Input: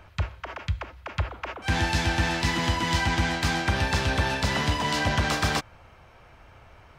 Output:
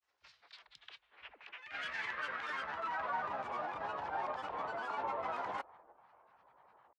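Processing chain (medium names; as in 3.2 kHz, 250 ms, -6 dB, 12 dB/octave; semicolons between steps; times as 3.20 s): bass shelf 340 Hz -5 dB; transient shaper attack -11 dB, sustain +5 dB; treble shelf 2.1 kHz -9 dB; granulator, pitch spread up and down by 12 st; band-pass sweep 5.6 kHz -> 890 Hz, 0.06–3.38 s; trim -1 dB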